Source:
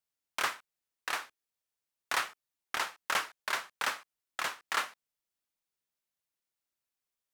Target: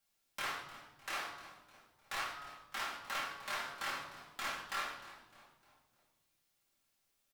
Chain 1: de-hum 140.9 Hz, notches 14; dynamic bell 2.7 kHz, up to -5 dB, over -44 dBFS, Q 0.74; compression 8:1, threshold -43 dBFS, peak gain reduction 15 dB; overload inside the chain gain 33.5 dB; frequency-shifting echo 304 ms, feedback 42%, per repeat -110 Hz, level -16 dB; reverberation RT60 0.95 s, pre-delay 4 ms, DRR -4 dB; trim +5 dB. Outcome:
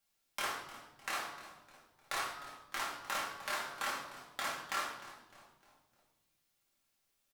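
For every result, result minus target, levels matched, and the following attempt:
overload inside the chain: distortion -7 dB; 8 kHz band +2.5 dB
de-hum 140.9 Hz, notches 14; dynamic bell 2.7 kHz, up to -5 dB, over -44 dBFS, Q 0.74; compression 8:1, threshold -43 dBFS, peak gain reduction 15 dB; overload inside the chain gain 42.5 dB; frequency-shifting echo 304 ms, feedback 42%, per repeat -110 Hz, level -16 dB; reverberation RT60 0.95 s, pre-delay 4 ms, DRR -4 dB; trim +5 dB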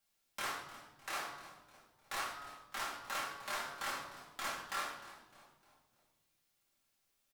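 8 kHz band +3.0 dB
de-hum 140.9 Hz, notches 14; dynamic bell 9.2 kHz, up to -5 dB, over -44 dBFS, Q 0.74; compression 8:1, threshold -43 dBFS, peak gain reduction 17 dB; overload inside the chain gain 42.5 dB; frequency-shifting echo 304 ms, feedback 42%, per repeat -110 Hz, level -16 dB; reverberation RT60 0.95 s, pre-delay 4 ms, DRR -4 dB; trim +5 dB

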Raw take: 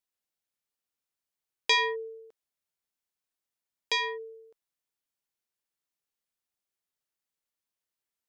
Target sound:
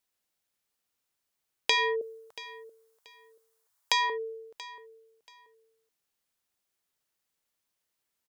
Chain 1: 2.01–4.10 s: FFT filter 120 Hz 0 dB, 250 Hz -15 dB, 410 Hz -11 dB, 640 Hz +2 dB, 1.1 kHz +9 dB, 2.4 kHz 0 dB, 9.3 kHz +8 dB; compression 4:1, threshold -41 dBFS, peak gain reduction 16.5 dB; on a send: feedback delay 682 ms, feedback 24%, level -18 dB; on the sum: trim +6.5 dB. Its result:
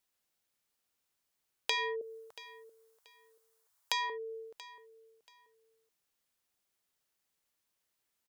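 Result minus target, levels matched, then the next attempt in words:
compression: peak gain reduction +7.5 dB
2.01–4.10 s: FFT filter 120 Hz 0 dB, 250 Hz -15 dB, 410 Hz -11 dB, 640 Hz +2 dB, 1.1 kHz +9 dB, 2.4 kHz 0 dB, 9.3 kHz +8 dB; compression 4:1, threshold -31 dBFS, peak gain reduction 9 dB; on a send: feedback delay 682 ms, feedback 24%, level -18 dB; on the sum: trim +6.5 dB

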